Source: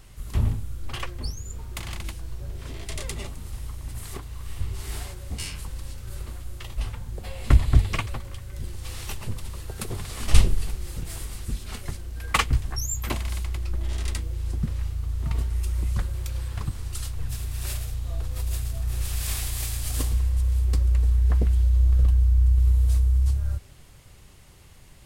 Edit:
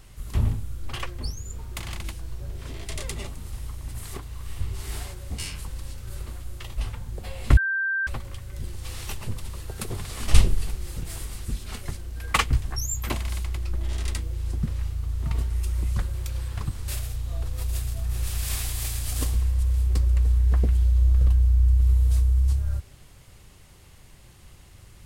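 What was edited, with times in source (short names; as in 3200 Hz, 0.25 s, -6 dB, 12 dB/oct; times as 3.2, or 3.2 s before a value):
7.57–8.07 bleep 1570 Hz -22.5 dBFS
16.88–17.66 cut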